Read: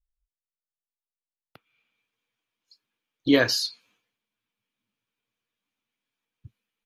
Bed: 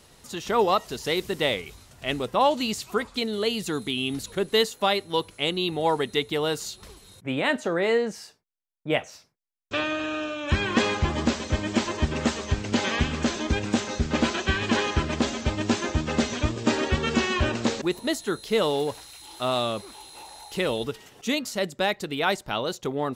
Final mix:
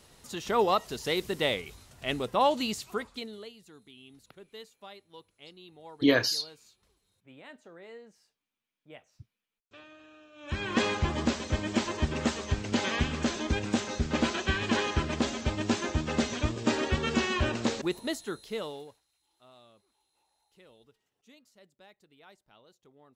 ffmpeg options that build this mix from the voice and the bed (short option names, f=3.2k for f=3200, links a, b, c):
-filter_complex "[0:a]adelay=2750,volume=-3.5dB[a];[1:a]volume=17.5dB,afade=t=out:st=2.61:d=0.92:silence=0.0841395,afade=t=in:st=10.32:d=0.5:silence=0.0891251,afade=t=out:st=17.79:d=1.21:silence=0.0421697[b];[a][b]amix=inputs=2:normalize=0"